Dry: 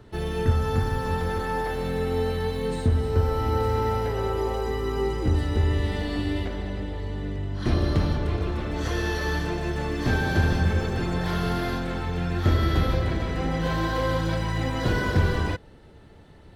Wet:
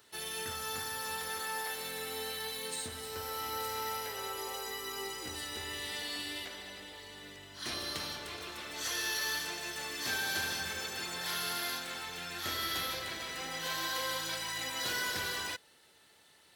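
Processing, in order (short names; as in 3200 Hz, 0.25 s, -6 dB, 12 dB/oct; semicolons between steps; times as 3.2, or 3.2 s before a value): differentiator; gain +7.5 dB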